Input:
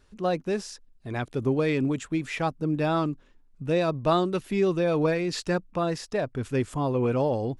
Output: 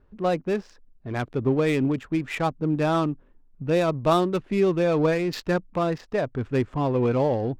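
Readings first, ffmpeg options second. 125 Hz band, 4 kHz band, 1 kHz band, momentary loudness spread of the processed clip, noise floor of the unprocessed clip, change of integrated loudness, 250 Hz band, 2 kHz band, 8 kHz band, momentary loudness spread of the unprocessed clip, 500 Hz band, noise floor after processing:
+2.5 dB, 0.0 dB, +2.5 dB, 8 LU, -58 dBFS, +2.5 dB, +2.5 dB, +1.5 dB, -3.5 dB, 8 LU, +2.5 dB, -56 dBFS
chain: -af "adynamicsmooth=sensitivity=6:basefreq=1300,volume=1.33"

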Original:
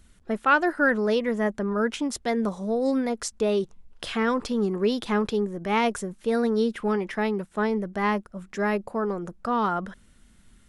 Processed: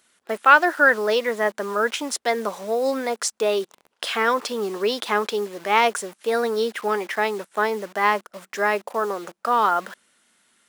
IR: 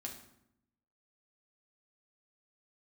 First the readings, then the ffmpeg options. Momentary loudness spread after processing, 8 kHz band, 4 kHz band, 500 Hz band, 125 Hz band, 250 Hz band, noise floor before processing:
10 LU, +7.5 dB, +7.0 dB, +3.0 dB, no reading, -6.5 dB, -57 dBFS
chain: -filter_complex "[0:a]asplit=2[s0][s1];[s1]acrusher=bits=6:mix=0:aa=0.000001,volume=0.708[s2];[s0][s2]amix=inputs=2:normalize=0,highpass=530,volume=1.33"

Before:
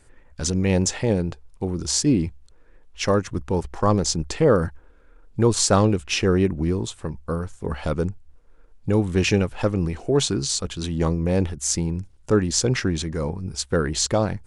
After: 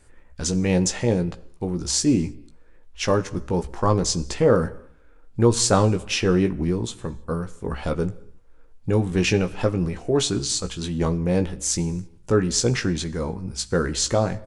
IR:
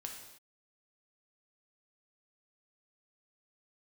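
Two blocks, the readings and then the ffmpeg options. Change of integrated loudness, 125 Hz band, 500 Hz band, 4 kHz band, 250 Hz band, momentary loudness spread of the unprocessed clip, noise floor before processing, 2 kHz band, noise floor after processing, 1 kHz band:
-0.5 dB, -0.5 dB, 0.0 dB, 0.0 dB, 0.0 dB, 10 LU, -52 dBFS, 0.0 dB, -49 dBFS, 0.0 dB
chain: -filter_complex "[0:a]asplit=2[s0][s1];[s1]adelay=17,volume=0.447[s2];[s0][s2]amix=inputs=2:normalize=0,asplit=2[s3][s4];[1:a]atrim=start_sample=2205[s5];[s4][s5]afir=irnorm=-1:irlink=0,volume=0.316[s6];[s3][s6]amix=inputs=2:normalize=0,volume=0.75"

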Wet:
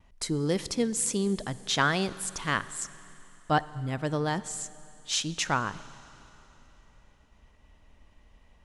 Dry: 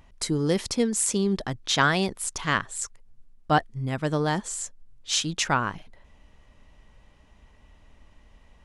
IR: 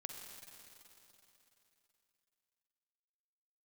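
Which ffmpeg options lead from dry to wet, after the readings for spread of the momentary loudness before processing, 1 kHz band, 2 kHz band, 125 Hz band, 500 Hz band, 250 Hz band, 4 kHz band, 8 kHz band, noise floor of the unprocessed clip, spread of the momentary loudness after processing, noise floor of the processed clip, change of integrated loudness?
11 LU, -3.5 dB, -3.5 dB, -3.5 dB, -3.5 dB, -3.5 dB, -3.5 dB, -3.5 dB, -57 dBFS, 11 LU, -60 dBFS, -3.5 dB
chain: -filter_complex "[0:a]agate=range=0.0224:threshold=0.00224:ratio=3:detection=peak,asplit=2[s0][s1];[1:a]atrim=start_sample=2205[s2];[s1][s2]afir=irnorm=-1:irlink=0,volume=0.447[s3];[s0][s3]amix=inputs=2:normalize=0,volume=0.531"

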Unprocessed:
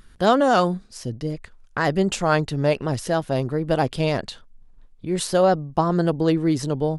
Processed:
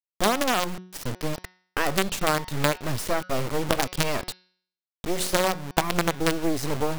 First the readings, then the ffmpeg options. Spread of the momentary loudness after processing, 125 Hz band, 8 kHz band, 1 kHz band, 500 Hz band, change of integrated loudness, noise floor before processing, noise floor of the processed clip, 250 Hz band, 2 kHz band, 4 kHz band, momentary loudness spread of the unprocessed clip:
10 LU, -7.0 dB, +4.0 dB, -4.0 dB, -6.5 dB, -4.5 dB, -50 dBFS, under -85 dBFS, -6.5 dB, +0.5 dB, +2.5 dB, 12 LU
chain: -af "acrusher=bits=3:dc=4:mix=0:aa=0.000001,acompressor=threshold=0.0794:ratio=6,bandreject=f=183.2:t=h:w=4,bandreject=f=366.4:t=h:w=4,bandreject=f=549.6:t=h:w=4,bandreject=f=732.8:t=h:w=4,bandreject=f=916:t=h:w=4,bandreject=f=1099.2:t=h:w=4,bandreject=f=1282.4:t=h:w=4,bandreject=f=1465.6:t=h:w=4,bandreject=f=1648.8:t=h:w=4,bandreject=f=1832:t=h:w=4,bandreject=f=2015.2:t=h:w=4,bandreject=f=2198.4:t=h:w=4,bandreject=f=2381.6:t=h:w=4,bandreject=f=2564.8:t=h:w=4,bandreject=f=2748:t=h:w=4,bandreject=f=2931.2:t=h:w=4,bandreject=f=3114.4:t=h:w=4,bandreject=f=3297.6:t=h:w=4,bandreject=f=3480.8:t=h:w=4,bandreject=f=3664:t=h:w=4,bandreject=f=3847.2:t=h:w=4,bandreject=f=4030.4:t=h:w=4,bandreject=f=4213.6:t=h:w=4,bandreject=f=4396.8:t=h:w=4,bandreject=f=4580:t=h:w=4,bandreject=f=4763.2:t=h:w=4,bandreject=f=4946.4:t=h:w=4,bandreject=f=5129.6:t=h:w=4,bandreject=f=5312.8:t=h:w=4,bandreject=f=5496:t=h:w=4,bandreject=f=5679.2:t=h:w=4,bandreject=f=5862.4:t=h:w=4,volume=1.58"

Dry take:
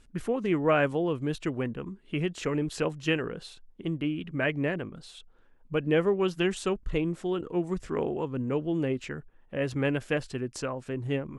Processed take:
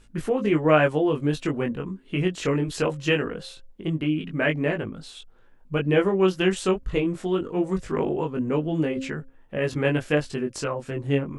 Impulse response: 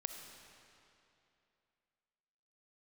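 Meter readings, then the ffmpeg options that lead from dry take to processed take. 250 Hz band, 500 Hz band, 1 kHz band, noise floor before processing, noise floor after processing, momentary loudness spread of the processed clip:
+5.0 dB, +5.0 dB, +5.0 dB, -58 dBFS, -53 dBFS, 10 LU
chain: -af "flanger=delay=19:depth=2.5:speed=0.22,bandreject=f=266.3:t=h:w=4,bandreject=f=532.6:t=h:w=4,volume=2.51"

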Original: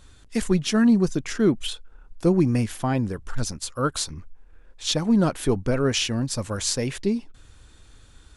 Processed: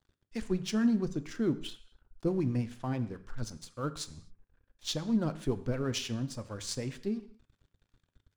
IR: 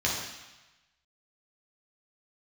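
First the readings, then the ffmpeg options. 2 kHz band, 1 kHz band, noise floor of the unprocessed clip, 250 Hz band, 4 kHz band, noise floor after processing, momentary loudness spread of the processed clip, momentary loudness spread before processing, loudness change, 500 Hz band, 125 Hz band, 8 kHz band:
-12.5 dB, -12.5 dB, -52 dBFS, -10.0 dB, -11.5 dB, -83 dBFS, 13 LU, 11 LU, -10.0 dB, -11.0 dB, -9.5 dB, -13.5 dB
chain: -filter_complex "[0:a]adynamicsmooth=sensitivity=3.5:basefreq=4800,acrossover=split=540[s0][s1];[s0]aeval=exprs='val(0)*(1-0.5/2+0.5/2*cos(2*PI*9.3*n/s))':c=same[s2];[s1]aeval=exprs='val(0)*(1-0.5/2-0.5/2*cos(2*PI*9.3*n/s))':c=same[s3];[s2][s3]amix=inputs=2:normalize=0,aeval=exprs='sgn(val(0))*max(abs(val(0))-0.00355,0)':c=same,asplit=2[s4][s5];[1:a]atrim=start_sample=2205,afade=t=out:st=0.44:d=0.01,atrim=end_sample=19845,asetrate=66150,aresample=44100[s6];[s5][s6]afir=irnorm=-1:irlink=0,volume=0.133[s7];[s4][s7]amix=inputs=2:normalize=0,volume=0.355"

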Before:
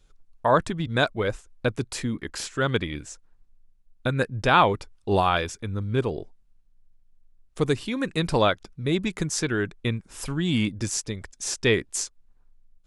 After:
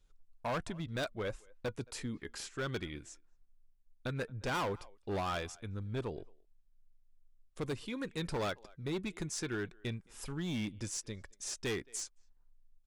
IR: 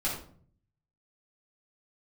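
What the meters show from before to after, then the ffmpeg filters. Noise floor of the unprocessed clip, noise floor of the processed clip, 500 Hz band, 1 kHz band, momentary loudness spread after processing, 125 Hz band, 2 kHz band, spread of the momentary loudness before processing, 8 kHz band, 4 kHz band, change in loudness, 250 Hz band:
-60 dBFS, -67 dBFS, -14.0 dB, -16.5 dB, 8 LU, -13.0 dB, -14.0 dB, 10 LU, -11.0 dB, -13.0 dB, -13.5 dB, -12.5 dB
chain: -filter_complex "[0:a]asplit=2[s0][s1];[s1]adelay=220,highpass=300,lowpass=3400,asoftclip=type=hard:threshold=0.211,volume=0.0447[s2];[s0][s2]amix=inputs=2:normalize=0,flanger=delay=1:depth=1.9:regen=81:speed=0.16:shape=triangular,volume=17.8,asoftclip=hard,volume=0.0562,volume=0.473"

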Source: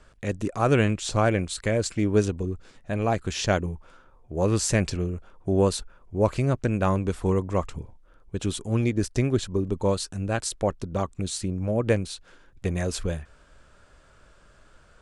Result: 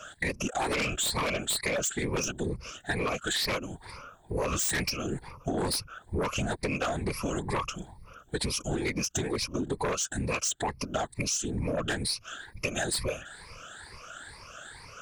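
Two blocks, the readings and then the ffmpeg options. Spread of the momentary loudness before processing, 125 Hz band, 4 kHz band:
11 LU, -10.0 dB, +3.0 dB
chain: -af "afftfilt=real='re*pow(10,21/40*sin(2*PI*(0.88*log(max(b,1)*sr/1024/100)/log(2)-(2.2)*(pts-256)/sr)))':imag='im*pow(10,21/40*sin(2*PI*(0.88*log(max(b,1)*sr/1024/100)/log(2)-(2.2)*(pts-256)/sr)))':win_size=1024:overlap=0.75,tiltshelf=f=770:g=-7.5,afftfilt=real='hypot(re,im)*cos(2*PI*random(0))':imag='hypot(re,im)*sin(2*PI*random(1))':win_size=512:overlap=0.75,aeval=exprs='0.398*sin(PI/2*4.47*val(0)/0.398)':c=same,acompressor=threshold=0.0891:ratio=10,volume=0.473"

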